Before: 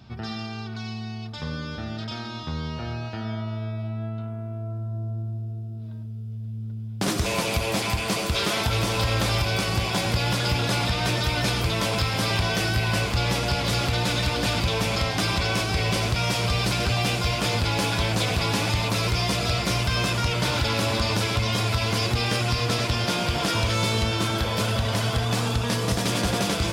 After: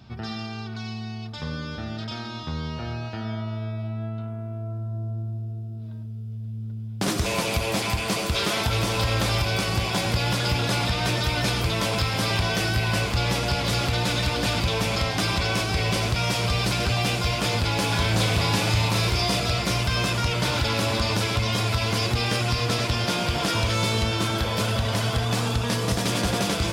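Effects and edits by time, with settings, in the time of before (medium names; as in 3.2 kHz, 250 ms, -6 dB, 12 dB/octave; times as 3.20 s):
17.86–19.40 s: flutter echo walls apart 6.3 m, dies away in 0.36 s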